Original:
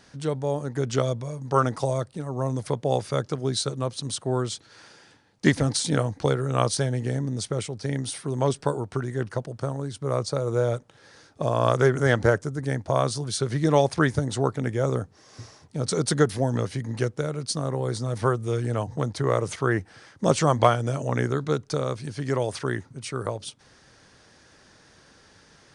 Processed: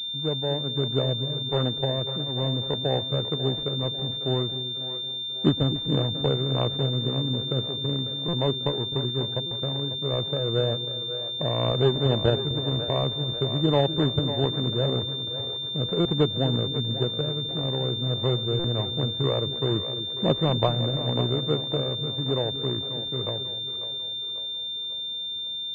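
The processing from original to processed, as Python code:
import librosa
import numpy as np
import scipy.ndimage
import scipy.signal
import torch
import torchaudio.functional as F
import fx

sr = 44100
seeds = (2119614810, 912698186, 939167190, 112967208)

p1 = scipy.signal.medfilt(x, 41)
p2 = p1 + fx.echo_split(p1, sr, split_hz=400.0, low_ms=255, high_ms=545, feedback_pct=52, wet_db=-10.5, dry=0)
p3 = fx.buffer_glitch(p2, sr, at_s=(8.28, 9.46, 16.0, 18.59, 25.21), block=256, repeats=8)
y = fx.pwm(p3, sr, carrier_hz=3600.0)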